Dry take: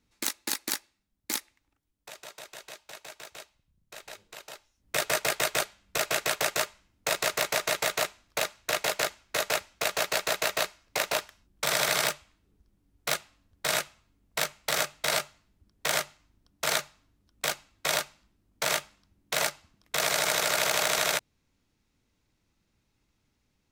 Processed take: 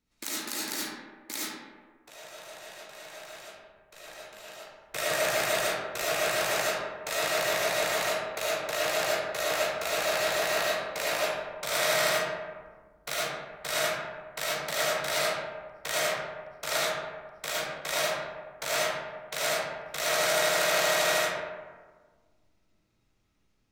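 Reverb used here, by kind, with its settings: algorithmic reverb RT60 1.5 s, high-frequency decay 0.45×, pre-delay 30 ms, DRR -8 dB; trim -7.5 dB

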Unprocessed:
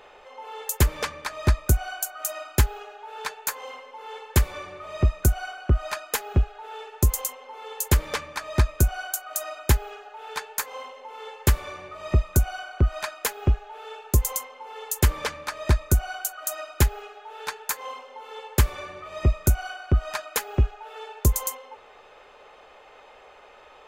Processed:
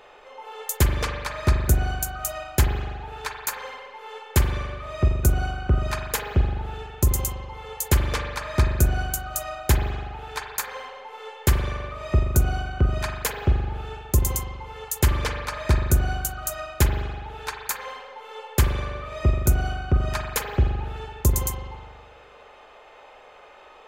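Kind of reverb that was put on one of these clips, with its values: spring tank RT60 1.5 s, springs 41 ms, chirp 20 ms, DRR 3.5 dB

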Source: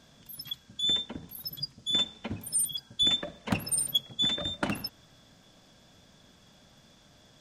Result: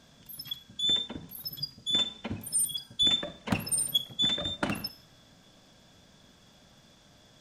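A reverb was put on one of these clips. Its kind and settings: Schroeder reverb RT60 0.41 s, combs from 33 ms, DRR 13.5 dB

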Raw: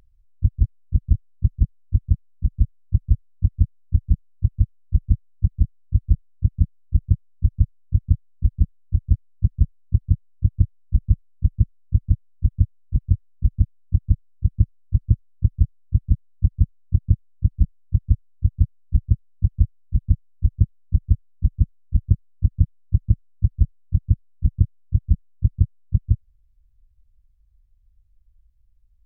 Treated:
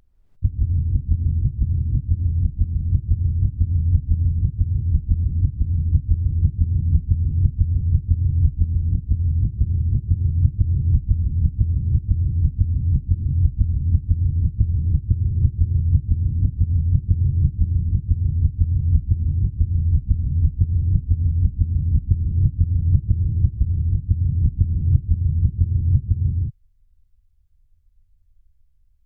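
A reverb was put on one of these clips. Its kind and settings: gated-style reverb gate 370 ms rising, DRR -1.5 dB; trim -2 dB

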